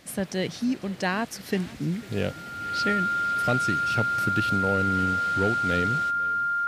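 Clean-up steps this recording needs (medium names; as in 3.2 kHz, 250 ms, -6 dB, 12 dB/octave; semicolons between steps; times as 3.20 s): clip repair -14 dBFS; band-stop 1.4 kHz, Q 30; inverse comb 500 ms -21.5 dB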